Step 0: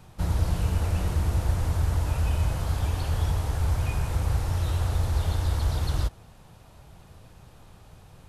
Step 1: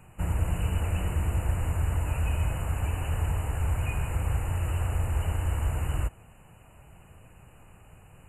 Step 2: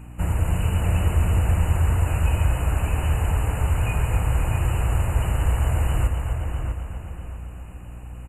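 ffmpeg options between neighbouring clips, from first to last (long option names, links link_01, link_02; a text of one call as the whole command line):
ffmpeg -i in.wav -af "afftfilt=real='re*(1-between(b*sr/4096,3000,6800))':imag='im*(1-between(b*sr/4096,3000,6800))':win_size=4096:overlap=0.75,equalizer=frequency=4100:width=0.82:gain=8,volume=-2.5dB" out.wav
ffmpeg -i in.wav -filter_complex "[0:a]asplit=2[link_01][link_02];[link_02]aecho=0:1:257|514|771|1028|1285|1542:0.355|0.195|0.107|0.059|0.0325|0.0179[link_03];[link_01][link_03]amix=inputs=2:normalize=0,aeval=exprs='val(0)+0.00631*(sin(2*PI*60*n/s)+sin(2*PI*2*60*n/s)/2+sin(2*PI*3*60*n/s)/3+sin(2*PI*4*60*n/s)/4+sin(2*PI*5*60*n/s)/5)':channel_layout=same,asplit=2[link_04][link_05];[link_05]adelay=648,lowpass=frequency=2800:poles=1,volume=-5.5dB,asplit=2[link_06][link_07];[link_07]adelay=648,lowpass=frequency=2800:poles=1,volume=0.35,asplit=2[link_08][link_09];[link_09]adelay=648,lowpass=frequency=2800:poles=1,volume=0.35,asplit=2[link_10][link_11];[link_11]adelay=648,lowpass=frequency=2800:poles=1,volume=0.35[link_12];[link_06][link_08][link_10][link_12]amix=inputs=4:normalize=0[link_13];[link_04][link_13]amix=inputs=2:normalize=0,volume=5dB" out.wav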